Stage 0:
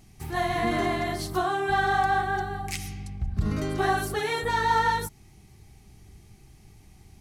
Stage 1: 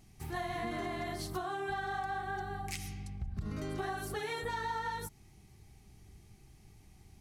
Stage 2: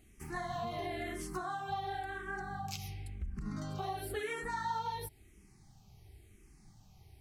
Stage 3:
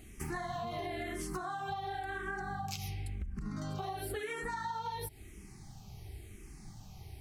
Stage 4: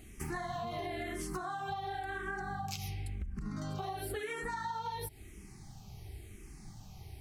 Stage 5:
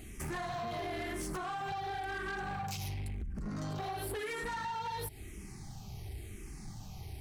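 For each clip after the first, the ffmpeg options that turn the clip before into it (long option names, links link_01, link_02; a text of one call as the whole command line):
ffmpeg -i in.wav -af "acompressor=threshold=-28dB:ratio=6,volume=-6dB" out.wav
ffmpeg -i in.wav -filter_complex "[0:a]asplit=2[link_01][link_02];[link_02]afreqshift=-0.96[link_03];[link_01][link_03]amix=inputs=2:normalize=1,volume=1.5dB" out.wav
ffmpeg -i in.wav -af "acompressor=threshold=-45dB:ratio=10,volume=9.5dB" out.wav
ffmpeg -i in.wav -af anull out.wav
ffmpeg -i in.wav -af "asoftclip=type=tanh:threshold=-39.5dB,volume=5dB" out.wav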